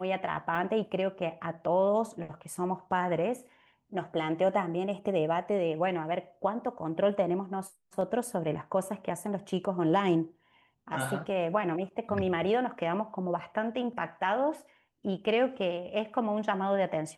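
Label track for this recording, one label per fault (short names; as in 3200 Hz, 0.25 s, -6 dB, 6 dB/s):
0.550000	0.550000	gap 3.3 ms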